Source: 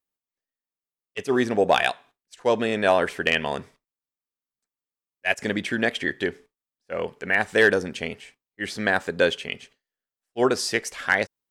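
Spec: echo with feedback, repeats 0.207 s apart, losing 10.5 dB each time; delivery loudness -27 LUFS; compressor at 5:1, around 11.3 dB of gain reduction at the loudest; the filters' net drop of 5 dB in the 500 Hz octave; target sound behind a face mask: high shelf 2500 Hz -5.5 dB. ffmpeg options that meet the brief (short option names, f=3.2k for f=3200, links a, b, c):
-af "equalizer=f=500:t=o:g=-6,acompressor=threshold=-29dB:ratio=5,highshelf=f=2.5k:g=-5.5,aecho=1:1:207|414|621:0.299|0.0896|0.0269,volume=8dB"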